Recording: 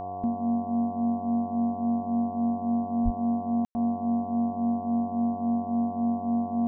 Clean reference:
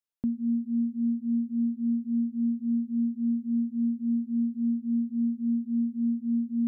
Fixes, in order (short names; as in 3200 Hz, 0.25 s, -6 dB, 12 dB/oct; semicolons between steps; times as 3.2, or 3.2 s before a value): de-hum 94 Hz, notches 12; notch 710 Hz, Q 30; 3.04–3.16 HPF 140 Hz 24 dB/oct; room tone fill 3.65–3.75